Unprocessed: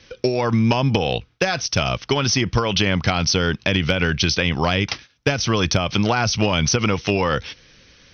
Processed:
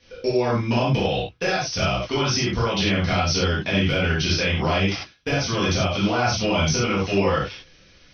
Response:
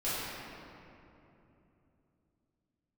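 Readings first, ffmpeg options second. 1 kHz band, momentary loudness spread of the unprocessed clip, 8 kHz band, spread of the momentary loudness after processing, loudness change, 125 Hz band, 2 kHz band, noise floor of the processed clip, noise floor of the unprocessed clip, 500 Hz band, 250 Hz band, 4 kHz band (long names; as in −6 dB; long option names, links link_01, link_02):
−1.5 dB, 5 LU, can't be measured, 4 LU, −2.0 dB, −2.0 dB, −2.0 dB, −53 dBFS, −56 dBFS, −1.0 dB, −2.0 dB, −3.0 dB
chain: -filter_complex "[1:a]atrim=start_sample=2205,afade=type=out:start_time=0.16:duration=0.01,atrim=end_sample=7497[link_01];[0:a][link_01]afir=irnorm=-1:irlink=0,volume=-7dB"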